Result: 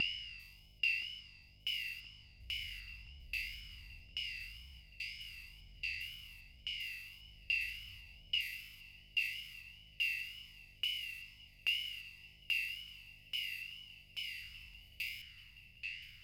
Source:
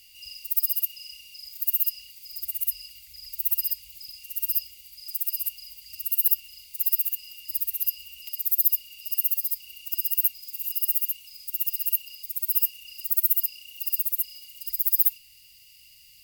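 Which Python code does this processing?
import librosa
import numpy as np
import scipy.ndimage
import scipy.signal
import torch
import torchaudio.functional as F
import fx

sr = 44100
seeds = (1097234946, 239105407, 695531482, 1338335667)

y = fx.spec_steps(x, sr, hold_ms=400)
y = fx.wow_flutter(y, sr, seeds[0], rate_hz=2.1, depth_cents=81.0)
y = fx.filter_lfo_lowpass(y, sr, shape='saw_down', hz=1.2, low_hz=560.0, high_hz=2600.0, q=3.9)
y = fx.echo_thinned(y, sr, ms=1022, feedback_pct=61, hz=420.0, wet_db=-17.0)
y = y * 10.0 ** (11.0 / 20.0)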